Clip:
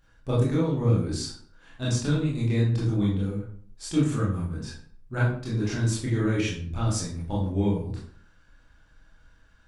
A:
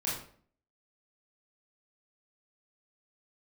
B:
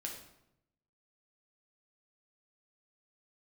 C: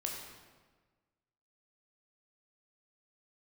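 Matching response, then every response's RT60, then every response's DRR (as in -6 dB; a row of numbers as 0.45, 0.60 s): A; 0.50, 0.85, 1.4 s; -7.0, -1.0, -0.5 dB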